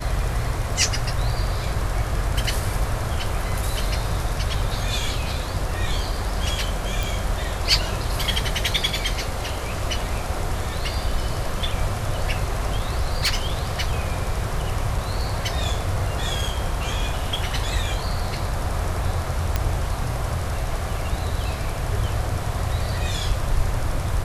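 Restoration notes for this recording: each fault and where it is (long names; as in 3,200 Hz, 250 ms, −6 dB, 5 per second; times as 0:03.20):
0:07.03: click
0:12.75–0:16.51: clipping −16 dBFS
0:19.56: click −7 dBFS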